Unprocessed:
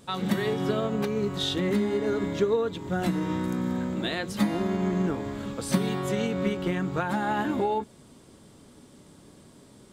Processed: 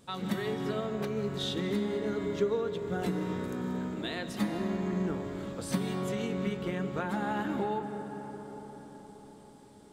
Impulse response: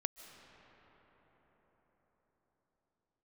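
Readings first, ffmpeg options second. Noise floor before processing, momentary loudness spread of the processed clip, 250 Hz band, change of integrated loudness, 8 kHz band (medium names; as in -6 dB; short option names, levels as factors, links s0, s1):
-53 dBFS, 12 LU, -5.5 dB, -5.5 dB, -6.0 dB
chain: -filter_complex "[1:a]atrim=start_sample=2205[s0];[0:a][s0]afir=irnorm=-1:irlink=0,volume=0.562"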